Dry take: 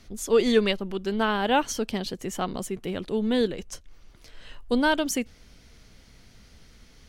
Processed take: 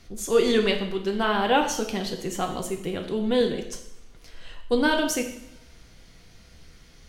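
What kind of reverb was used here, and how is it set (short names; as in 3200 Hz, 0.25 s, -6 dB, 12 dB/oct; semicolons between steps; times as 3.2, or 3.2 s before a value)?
two-slope reverb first 0.72 s, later 2.1 s, from -27 dB, DRR 2.5 dB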